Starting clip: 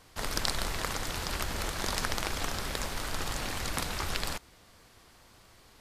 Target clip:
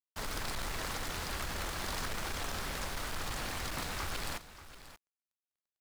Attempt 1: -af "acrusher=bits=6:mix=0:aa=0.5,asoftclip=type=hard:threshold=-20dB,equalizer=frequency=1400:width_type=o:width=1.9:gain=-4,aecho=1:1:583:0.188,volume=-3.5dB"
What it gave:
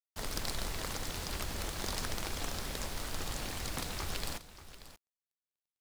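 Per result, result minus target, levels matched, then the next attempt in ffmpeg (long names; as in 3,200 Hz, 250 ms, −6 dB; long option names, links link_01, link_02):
hard clipping: distortion −9 dB; 1,000 Hz band −2.5 dB
-af "acrusher=bits=6:mix=0:aa=0.5,asoftclip=type=hard:threshold=-30dB,equalizer=frequency=1400:width_type=o:width=1.9:gain=-4,aecho=1:1:583:0.188,volume=-3.5dB"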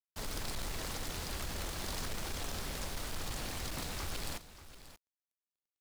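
1,000 Hz band −3.0 dB
-af "acrusher=bits=6:mix=0:aa=0.5,asoftclip=type=hard:threshold=-30dB,equalizer=frequency=1400:width_type=o:width=1.9:gain=2.5,aecho=1:1:583:0.188,volume=-3.5dB"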